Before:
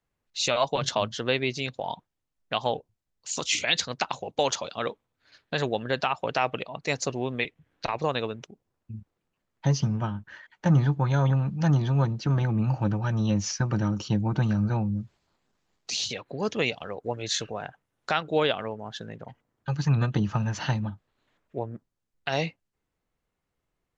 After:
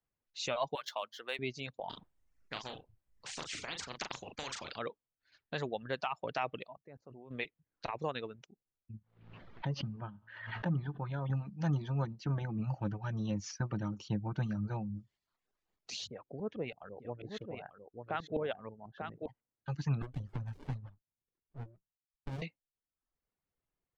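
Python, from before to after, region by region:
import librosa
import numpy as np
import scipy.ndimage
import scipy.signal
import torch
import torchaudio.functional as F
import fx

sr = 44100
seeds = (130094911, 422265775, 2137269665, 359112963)

y = fx.chain(x, sr, fx.median_filter(points=5),
    fx.clip_hard(threshold_db=-12.5),
    fx.highpass(hz=700.0, slope=12), at=(0.75, 1.39))
y = fx.chain(y, sr, fx.high_shelf(hz=4900.0, db=-8.5),
    fx.doubler(ms=38.0, db=-7.0),
    fx.spectral_comp(ratio=4.0), at=(1.89, 4.79))
y = fx.chain(y, sr, fx.lowpass(hz=1200.0, slope=12),
    fx.level_steps(step_db=21), at=(6.73, 7.31))
y = fx.chain(y, sr, fx.lowpass(hz=3900.0, slope=24),
    fx.comb_fb(f0_hz=56.0, decay_s=0.98, harmonics='all', damping=0.0, mix_pct=40),
    fx.pre_swell(db_per_s=55.0), at=(8.97, 11.3))
y = fx.chain(y, sr, fx.filter_lfo_lowpass(shape='saw_up', hz=6.1, low_hz=300.0, high_hz=3500.0, q=0.73),
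    fx.echo_single(ms=892, db=-6.0), at=(16.07, 19.27))
y = fx.chain(y, sr, fx.cheby1_bandstop(low_hz=180.0, high_hz=440.0, order=4),
    fx.filter_lfo_notch(shape='square', hz=5.5, low_hz=440.0, high_hz=2500.0, q=1.6),
    fx.running_max(window=65), at=(20.02, 22.42))
y = fx.dereverb_blind(y, sr, rt60_s=0.7)
y = fx.high_shelf(y, sr, hz=5500.0, db=-8.0)
y = F.gain(torch.from_numpy(y), -9.0).numpy()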